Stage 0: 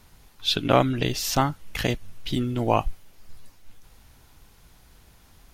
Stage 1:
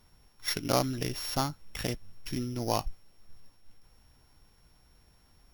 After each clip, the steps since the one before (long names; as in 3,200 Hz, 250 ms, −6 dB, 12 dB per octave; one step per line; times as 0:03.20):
samples sorted by size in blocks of 8 samples
level −8 dB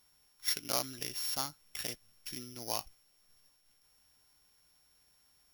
spectral tilt +3 dB per octave
level −8.5 dB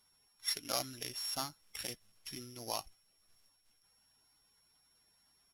spectral magnitudes quantised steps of 15 dB
downsampling to 32,000 Hz
level −1.5 dB